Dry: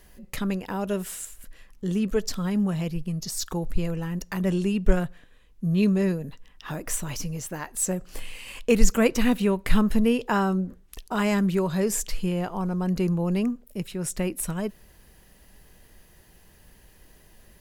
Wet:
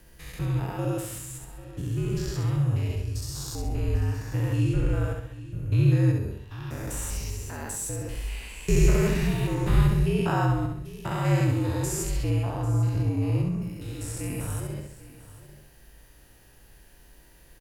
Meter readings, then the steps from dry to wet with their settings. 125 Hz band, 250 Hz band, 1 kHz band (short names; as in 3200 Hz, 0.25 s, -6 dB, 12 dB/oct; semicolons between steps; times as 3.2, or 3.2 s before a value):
+6.5 dB, -5.5 dB, -2.5 dB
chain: stepped spectrum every 0.2 s; feedback echo 67 ms, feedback 43%, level -4.5 dB; frequency shift -64 Hz; on a send: echo 0.795 s -17 dB